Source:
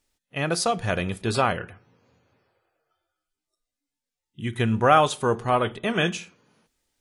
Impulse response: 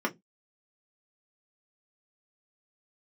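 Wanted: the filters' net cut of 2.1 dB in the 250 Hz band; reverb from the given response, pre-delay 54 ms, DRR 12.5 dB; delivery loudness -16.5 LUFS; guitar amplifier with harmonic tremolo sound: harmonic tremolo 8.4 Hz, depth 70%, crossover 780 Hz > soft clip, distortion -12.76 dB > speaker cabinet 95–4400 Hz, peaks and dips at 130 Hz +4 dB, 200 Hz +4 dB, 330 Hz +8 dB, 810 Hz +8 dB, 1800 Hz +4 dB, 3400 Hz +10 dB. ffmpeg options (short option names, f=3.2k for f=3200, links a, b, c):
-filter_complex "[0:a]equalizer=f=250:t=o:g=-9,asplit=2[a][b];[1:a]atrim=start_sample=2205,adelay=54[c];[b][c]afir=irnorm=-1:irlink=0,volume=-21.5dB[d];[a][d]amix=inputs=2:normalize=0,acrossover=split=780[e][f];[e]aeval=exprs='val(0)*(1-0.7/2+0.7/2*cos(2*PI*8.4*n/s))':c=same[g];[f]aeval=exprs='val(0)*(1-0.7/2-0.7/2*cos(2*PI*8.4*n/s))':c=same[h];[g][h]amix=inputs=2:normalize=0,asoftclip=threshold=-17.5dB,highpass=95,equalizer=f=130:t=q:w=4:g=4,equalizer=f=200:t=q:w=4:g=4,equalizer=f=330:t=q:w=4:g=8,equalizer=f=810:t=q:w=4:g=8,equalizer=f=1.8k:t=q:w=4:g=4,equalizer=f=3.4k:t=q:w=4:g=10,lowpass=f=4.4k:w=0.5412,lowpass=f=4.4k:w=1.3066,volume=10dB"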